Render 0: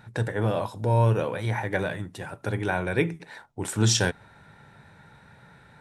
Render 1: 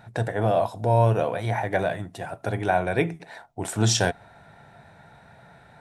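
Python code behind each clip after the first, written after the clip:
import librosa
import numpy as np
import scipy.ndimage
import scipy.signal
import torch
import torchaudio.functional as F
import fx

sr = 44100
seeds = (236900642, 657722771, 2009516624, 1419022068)

y = fx.peak_eq(x, sr, hz=690.0, db=14.5, octaves=0.29)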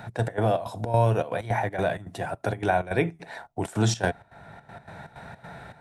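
y = fx.step_gate(x, sr, bpm=160, pattern='x.x.xx.xx.xx', floor_db=-12.0, edge_ms=4.5)
y = fx.band_squash(y, sr, depth_pct=40)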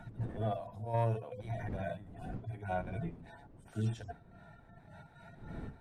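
y = fx.hpss_only(x, sr, part='harmonic')
y = fx.dmg_wind(y, sr, seeds[0], corner_hz=200.0, level_db=-40.0)
y = 10.0 ** (-12.5 / 20.0) * np.tanh(y / 10.0 ** (-12.5 / 20.0))
y = y * librosa.db_to_amplitude(-9.0)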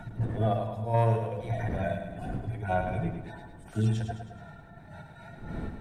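y = fx.echo_feedback(x, sr, ms=106, feedback_pct=53, wet_db=-7.5)
y = y * librosa.db_to_amplitude(7.5)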